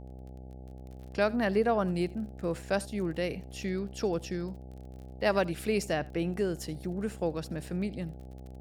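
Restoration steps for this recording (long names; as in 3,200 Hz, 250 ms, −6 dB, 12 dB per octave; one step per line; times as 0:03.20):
click removal
hum removal 64.2 Hz, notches 13
echo removal 81 ms −22.5 dB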